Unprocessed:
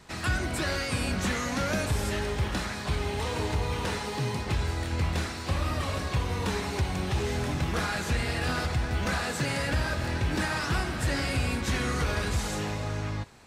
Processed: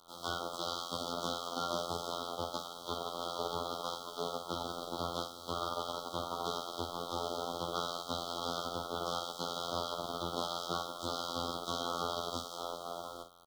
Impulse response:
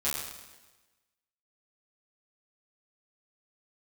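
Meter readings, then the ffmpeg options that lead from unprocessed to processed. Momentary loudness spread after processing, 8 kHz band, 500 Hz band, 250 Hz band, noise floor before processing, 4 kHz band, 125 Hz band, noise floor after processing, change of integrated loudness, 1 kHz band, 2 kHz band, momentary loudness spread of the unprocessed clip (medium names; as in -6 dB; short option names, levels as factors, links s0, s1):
4 LU, -9.0 dB, -5.0 dB, -12.5 dB, -35 dBFS, -3.0 dB, -21.0 dB, -48 dBFS, -8.5 dB, -3.0 dB, -21.5 dB, 3 LU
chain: -filter_complex "[0:a]highpass=f=62:w=0.5412,highpass=f=62:w=1.3066,aeval=exprs='0.141*(cos(1*acos(clip(val(0)/0.141,-1,1)))-cos(1*PI/2))+0.0398*(cos(7*acos(clip(val(0)/0.141,-1,1)))-cos(7*PI/2))':c=same,lowshelf=f=230:g=-7,afftfilt=real='hypot(re,im)*cos(PI*b)':imag='0':win_size=2048:overlap=0.75,acrossover=split=200 5200:gain=0.2 1 0.1[s0][s1][s2];[s0][s1][s2]amix=inputs=3:normalize=0,acrusher=bits=8:mix=0:aa=0.000001,asuperstop=centerf=2100:order=20:qfactor=1.2,asplit=2[s3][s4];[s4]adelay=48,volume=0.355[s5];[s3][s5]amix=inputs=2:normalize=0"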